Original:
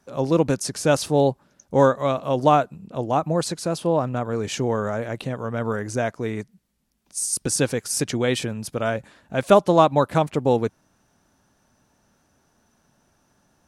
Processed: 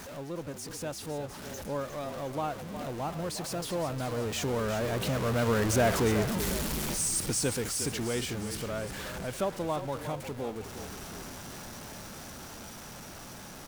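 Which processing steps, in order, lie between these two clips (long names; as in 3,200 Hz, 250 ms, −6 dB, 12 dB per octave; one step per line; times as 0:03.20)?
converter with a step at zero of −21 dBFS
source passing by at 0:05.96, 12 m/s, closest 8.2 metres
in parallel at +1 dB: downward compressor, threshold −43 dBFS, peak gain reduction 23 dB
on the sum: echo with shifted repeats 358 ms, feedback 53%, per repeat −36 Hz, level −10 dB
level −5 dB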